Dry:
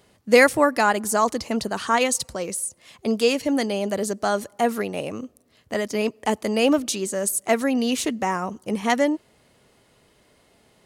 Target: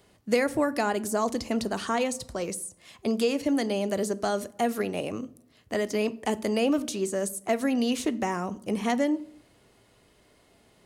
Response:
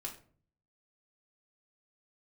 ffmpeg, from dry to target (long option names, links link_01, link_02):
-filter_complex "[0:a]asplit=2[link_01][link_02];[1:a]atrim=start_sample=2205,lowshelf=frequency=410:gain=7.5[link_03];[link_02][link_03]afir=irnorm=-1:irlink=0,volume=-9.5dB[link_04];[link_01][link_04]amix=inputs=2:normalize=0,acrossover=split=750|1600[link_05][link_06][link_07];[link_05]acompressor=threshold=-18dB:ratio=4[link_08];[link_06]acompressor=threshold=-35dB:ratio=4[link_09];[link_07]acompressor=threshold=-30dB:ratio=4[link_10];[link_08][link_09][link_10]amix=inputs=3:normalize=0,volume=-4dB"